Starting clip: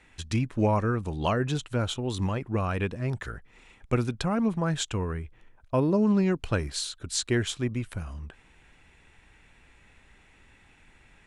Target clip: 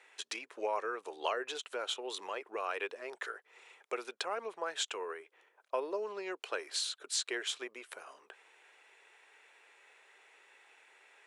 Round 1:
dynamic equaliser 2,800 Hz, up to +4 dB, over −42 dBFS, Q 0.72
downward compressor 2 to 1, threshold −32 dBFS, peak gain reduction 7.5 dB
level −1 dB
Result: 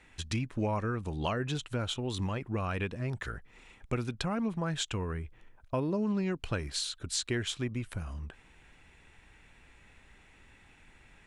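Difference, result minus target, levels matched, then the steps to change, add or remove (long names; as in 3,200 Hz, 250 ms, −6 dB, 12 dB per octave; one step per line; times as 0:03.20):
500 Hz band −2.5 dB
add after downward compressor: Chebyshev high-pass filter 410 Hz, order 4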